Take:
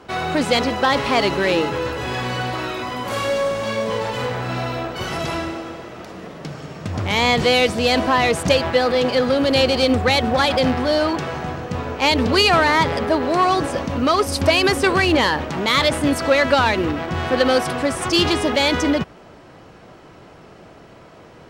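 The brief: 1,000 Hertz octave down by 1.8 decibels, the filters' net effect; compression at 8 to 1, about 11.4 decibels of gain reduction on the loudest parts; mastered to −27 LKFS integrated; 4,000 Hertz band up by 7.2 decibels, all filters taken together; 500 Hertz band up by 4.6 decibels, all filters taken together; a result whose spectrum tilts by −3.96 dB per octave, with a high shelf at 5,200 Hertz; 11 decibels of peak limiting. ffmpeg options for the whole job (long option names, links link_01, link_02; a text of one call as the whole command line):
ffmpeg -i in.wav -af "equalizer=frequency=500:width_type=o:gain=6.5,equalizer=frequency=1000:width_type=o:gain=-5.5,equalizer=frequency=4000:width_type=o:gain=6.5,highshelf=frequency=5200:gain=6.5,acompressor=threshold=-19dB:ratio=8,volume=-0.5dB,alimiter=limit=-19dB:level=0:latency=1" out.wav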